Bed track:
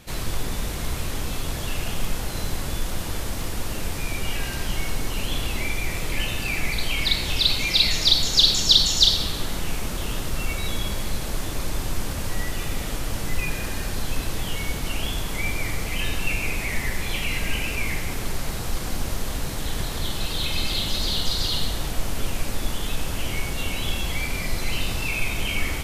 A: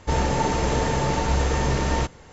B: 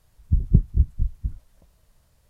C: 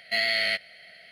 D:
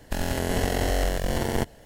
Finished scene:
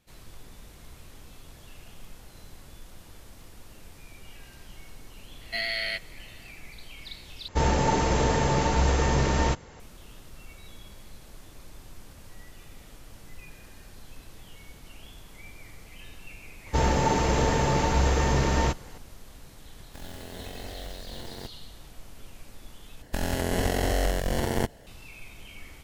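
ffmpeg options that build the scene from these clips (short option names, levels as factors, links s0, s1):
-filter_complex "[1:a]asplit=2[s0][s1];[4:a]asplit=2[s2][s3];[0:a]volume=0.1[s4];[s2]acrusher=bits=5:mix=0:aa=0.000001[s5];[s4]asplit=3[s6][s7][s8];[s6]atrim=end=7.484[s9];[s0]atrim=end=2.32,asetpts=PTS-STARTPTS,volume=0.891[s10];[s7]atrim=start=9.796:end=23.024[s11];[s3]atrim=end=1.85,asetpts=PTS-STARTPTS,volume=0.891[s12];[s8]atrim=start=24.866[s13];[3:a]atrim=end=1.11,asetpts=PTS-STARTPTS,volume=0.562,afade=t=in:d=0.004:c=hsin,afade=t=out:st=1.106:d=0.004:c=hsin,adelay=238581S[s14];[s1]atrim=end=2.32,asetpts=PTS-STARTPTS,volume=0.891,afade=t=in:d=0.004:c=hsin,afade=t=out:st=2.316:d=0.004:c=hsin,adelay=16660[s15];[s5]atrim=end=1.85,asetpts=PTS-STARTPTS,volume=0.158,afade=t=in:d=0.004:c=hsin,afade=t=out:st=1.846:d=0.004:c=hsin,adelay=19830[s16];[s9][s10]acrossfade=d=0.004:c1=hsin:c2=hsin[s17];[s17][s11]acrossfade=d=0.004:c1=hsin:c2=hsin[s18];[s18][s12]acrossfade=d=0.004:c1=hsin:c2=hsin[s19];[s19][s13]acrossfade=d=0.004:c1=hsin:c2=hsin[s20];[s20][s14][s15][s16]amix=inputs=4:normalize=0"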